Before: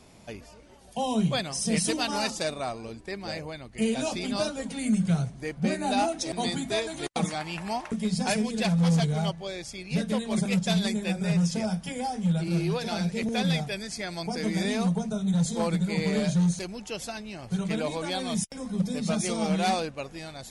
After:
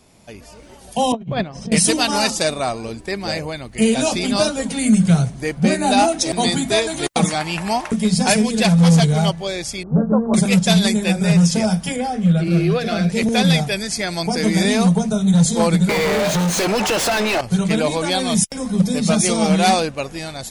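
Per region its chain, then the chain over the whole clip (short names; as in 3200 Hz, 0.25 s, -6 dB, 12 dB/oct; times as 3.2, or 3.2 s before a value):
1.12–1.72 expander -28 dBFS + tape spacing loss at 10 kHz 40 dB + negative-ratio compressor -33 dBFS, ratio -0.5
9.83–10.34 steep low-pass 1400 Hz 72 dB/oct + doubler 13 ms -9 dB
11.96–13.1 Butterworth band-stop 900 Hz, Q 3.6 + tone controls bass -1 dB, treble -12 dB
15.89–17.41 HPF 250 Hz + overdrive pedal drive 37 dB, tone 1600 Hz, clips at -16 dBFS + compressor 4:1, threshold -27 dBFS
whole clip: high shelf 9300 Hz +7.5 dB; AGC gain up to 11 dB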